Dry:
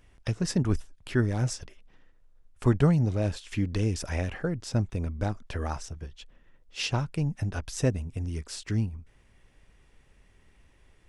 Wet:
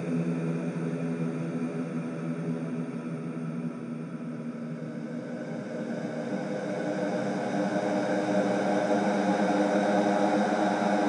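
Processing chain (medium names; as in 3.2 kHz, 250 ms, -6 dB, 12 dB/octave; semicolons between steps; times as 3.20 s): Paulstretch 48×, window 0.25 s, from 5.04 s; FFT band-pass 120–10000 Hz; trim +6.5 dB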